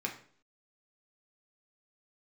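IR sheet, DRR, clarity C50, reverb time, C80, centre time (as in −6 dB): 0.0 dB, 10.0 dB, 0.50 s, 14.0 dB, 17 ms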